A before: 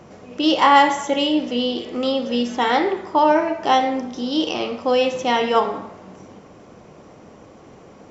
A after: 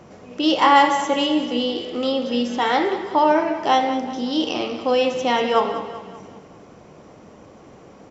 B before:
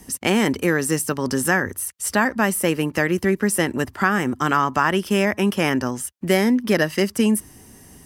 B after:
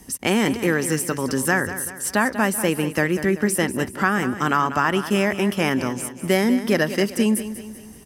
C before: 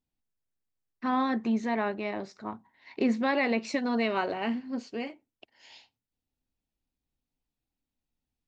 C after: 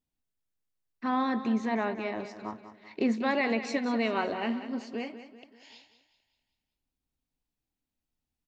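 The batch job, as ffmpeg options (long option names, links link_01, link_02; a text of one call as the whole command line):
ffmpeg -i in.wav -af "aecho=1:1:192|384|576|768|960:0.251|0.118|0.0555|0.0261|0.0123,volume=-1dB" out.wav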